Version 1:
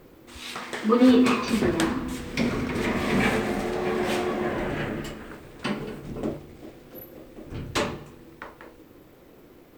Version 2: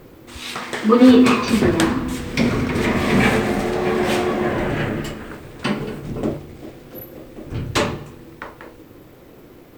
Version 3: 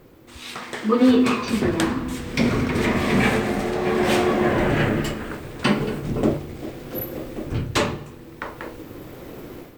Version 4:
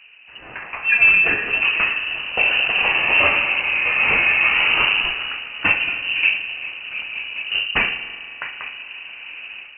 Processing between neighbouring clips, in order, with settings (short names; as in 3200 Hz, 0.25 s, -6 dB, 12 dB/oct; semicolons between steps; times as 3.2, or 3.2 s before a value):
bell 110 Hz +4.5 dB 0.78 oct; gain +6.5 dB
AGC gain up to 13 dB; gain -6 dB
spring tank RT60 3.2 s, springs 36 ms, chirp 50 ms, DRR 11.5 dB; low-pass opened by the level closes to 1800 Hz, open at -14 dBFS; inverted band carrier 2900 Hz; gain +2 dB